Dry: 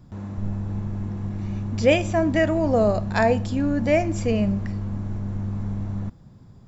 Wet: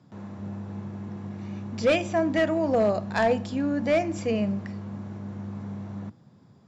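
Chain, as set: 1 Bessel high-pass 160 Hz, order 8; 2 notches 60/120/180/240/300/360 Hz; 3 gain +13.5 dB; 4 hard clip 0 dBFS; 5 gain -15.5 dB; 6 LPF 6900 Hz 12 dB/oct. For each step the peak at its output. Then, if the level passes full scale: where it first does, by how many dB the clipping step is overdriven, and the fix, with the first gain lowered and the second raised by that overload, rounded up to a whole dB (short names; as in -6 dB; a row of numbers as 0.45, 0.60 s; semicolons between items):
-5.0, -4.5, +9.0, 0.0, -15.5, -15.0 dBFS; step 3, 9.0 dB; step 3 +4.5 dB, step 5 -6.5 dB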